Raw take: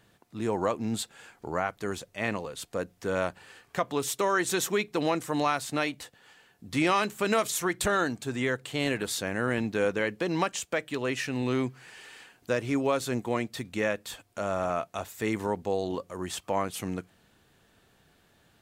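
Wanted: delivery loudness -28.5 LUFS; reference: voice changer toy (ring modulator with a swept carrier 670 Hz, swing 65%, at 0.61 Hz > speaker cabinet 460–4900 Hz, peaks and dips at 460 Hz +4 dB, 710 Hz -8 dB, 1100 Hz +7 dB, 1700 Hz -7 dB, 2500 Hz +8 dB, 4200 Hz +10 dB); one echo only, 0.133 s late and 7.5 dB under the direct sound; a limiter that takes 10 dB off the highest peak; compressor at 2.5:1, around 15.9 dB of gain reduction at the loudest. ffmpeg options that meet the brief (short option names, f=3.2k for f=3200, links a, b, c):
-af "acompressor=threshold=-47dB:ratio=2.5,alimiter=level_in=11dB:limit=-24dB:level=0:latency=1,volume=-11dB,aecho=1:1:133:0.422,aeval=exprs='val(0)*sin(2*PI*670*n/s+670*0.65/0.61*sin(2*PI*0.61*n/s))':c=same,highpass=460,equalizer=f=460:t=q:w=4:g=4,equalizer=f=710:t=q:w=4:g=-8,equalizer=f=1.1k:t=q:w=4:g=7,equalizer=f=1.7k:t=q:w=4:g=-7,equalizer=f=2.5k:t=q:w=4:g=8,equalizer=f=4.2k:t=q:w=4:g=10,lowpass=f=4.9k:w=0.5412,lowpass=f=4.9k:w=1.3066,volume=19.5dB"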